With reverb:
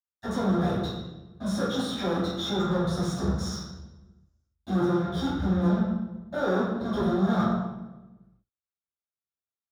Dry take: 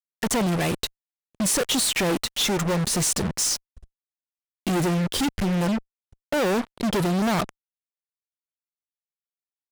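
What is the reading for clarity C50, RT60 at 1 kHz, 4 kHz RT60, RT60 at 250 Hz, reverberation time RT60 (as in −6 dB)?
−0.5 dB, 1.0 s, 0.80 s, 1.4 s, 1.1 s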